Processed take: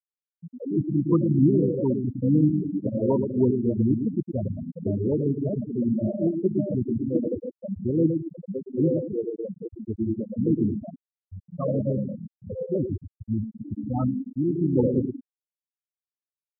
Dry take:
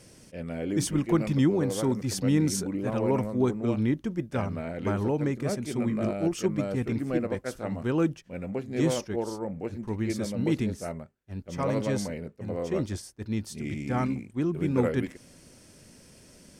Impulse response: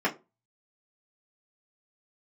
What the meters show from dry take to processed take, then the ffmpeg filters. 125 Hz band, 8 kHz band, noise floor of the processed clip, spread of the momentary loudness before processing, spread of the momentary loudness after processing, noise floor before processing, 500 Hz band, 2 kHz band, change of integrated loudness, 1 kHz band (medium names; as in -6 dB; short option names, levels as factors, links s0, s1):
+3.5 dB, under -40 dB, under -85 dBFS, 10 LU, 13 LU, -55 dBFS, +2.5 dB, under -40 dB, +3.0 dB, -6.5 dB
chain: -af "aecho=1:1:111|222|333|444|555|666:0.531|0.26|0.127|0.0625|0.0306|0.015,afftfilt=real='re*gte(hypot(re,im),0.178)':imag='im*gte(hypot(re,im),0.178)':win_size=1024:overlap=0.75,volume=1.41"